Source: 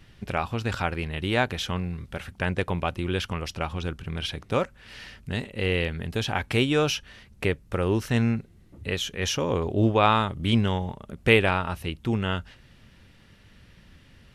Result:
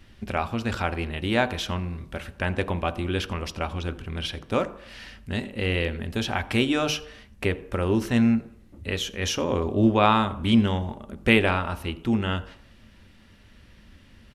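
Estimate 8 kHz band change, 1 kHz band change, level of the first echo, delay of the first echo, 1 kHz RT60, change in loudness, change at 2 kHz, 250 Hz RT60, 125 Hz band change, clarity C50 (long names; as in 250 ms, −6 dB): 0.0 dB, +0.5 dB, −22.0 dB, 85 ms, 0.70 s, +1.0 dB, 0.0 dB, 0.55 s, −1.0 dB, 16.0 dB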